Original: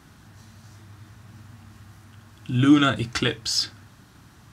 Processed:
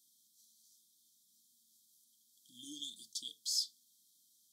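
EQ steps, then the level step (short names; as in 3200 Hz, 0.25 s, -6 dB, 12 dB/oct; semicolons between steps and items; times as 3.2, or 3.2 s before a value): brick-wall FIR band-stop 460–3100 Hz; differentiator; fixed phaser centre 390 Hz, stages 6; -7.0 dB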